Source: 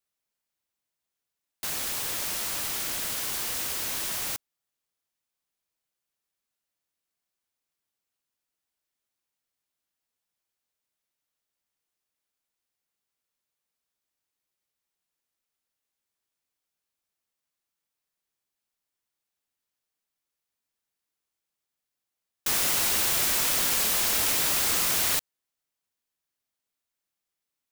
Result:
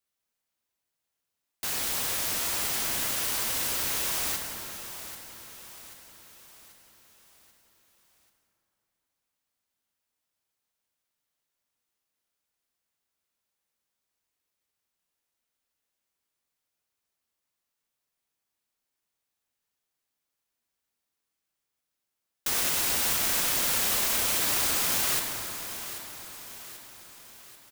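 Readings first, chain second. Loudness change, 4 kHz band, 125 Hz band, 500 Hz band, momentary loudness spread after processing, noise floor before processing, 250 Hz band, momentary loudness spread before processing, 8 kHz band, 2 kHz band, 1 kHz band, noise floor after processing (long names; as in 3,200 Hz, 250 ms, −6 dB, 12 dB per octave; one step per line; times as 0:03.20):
−1.5 dB, −0.5 dB, +0.5 dB, +0.5 dB, 18 LU, below −85 dBFS, +0.5 dB, 8 LU, −0.5 dB, 0.0 dB, +0.5 dB, −84 dBFS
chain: brickwall limiter −18 dBFS, peak gain reduction 5.5 dB
on a send: repeating echo 787 ms, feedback 49%, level −12 dB
on the sum: dense smooth reverb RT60 3.2 s, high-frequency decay 0.55×, DRR 2.5 dB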